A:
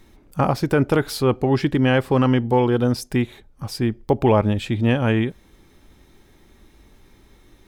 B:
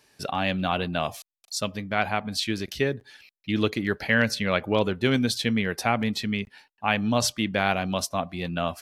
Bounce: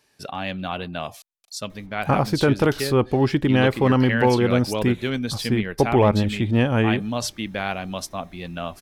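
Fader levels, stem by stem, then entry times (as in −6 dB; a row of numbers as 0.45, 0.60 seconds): −0.5, −3.0 decibels; 1.70, 0.00 seconds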